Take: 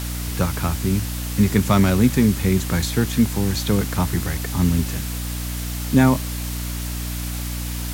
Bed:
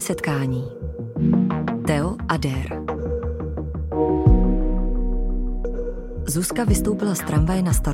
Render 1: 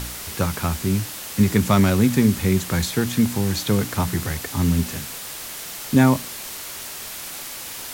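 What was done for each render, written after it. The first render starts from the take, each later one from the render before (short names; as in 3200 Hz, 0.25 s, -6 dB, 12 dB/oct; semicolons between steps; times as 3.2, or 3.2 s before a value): de-hum 60 Hz, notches 5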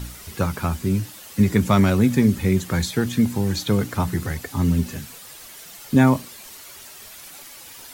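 denoiser 10 dB, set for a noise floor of -34 dBFS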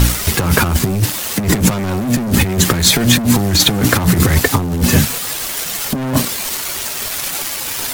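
sample leveller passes 5; negative-ratio compressor -12 dBFS, ratio -0.5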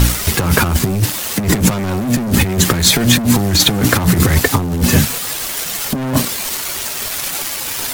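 nothing audible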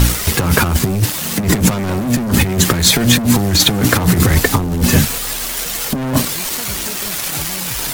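add bed -11.5 dB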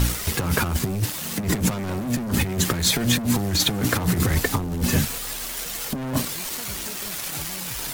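gain -9 dB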